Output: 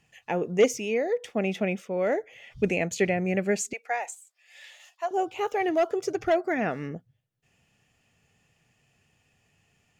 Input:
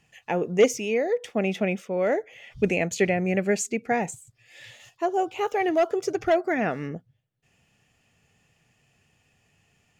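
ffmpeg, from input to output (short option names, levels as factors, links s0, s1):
-filter_complex "[0:a]asettb=1/sr,asplit=3[s0][s1][s2];[s0]atrim=end=3.734[s3];[s1]atrim=start=3.73:end=5.11,asetpts=PTS-STARTPTS,afade=t=in:d=0.004:c=qsin,afade=t=out:st=1.376:d=0.004:c=qsin,highpass=f=620:w=0.5412,highpass=f=620:w=1.3066[s4];[s2]atrim=start=5.106[s5];[s3][s4]acrossfade=d=0.004:c1=hsin:c2=qsin[s6];[s6][s5]acrossfade=d=0.004:c1=qsin:c2=hsin,volume=0.794"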